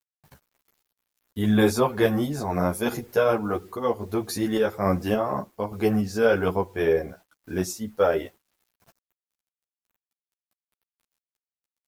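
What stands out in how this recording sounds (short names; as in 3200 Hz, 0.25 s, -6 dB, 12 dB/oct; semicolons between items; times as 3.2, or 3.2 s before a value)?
a quantiser's noise floor 10-bit, dither none; random-step tremolo; a shimmering, thickened sound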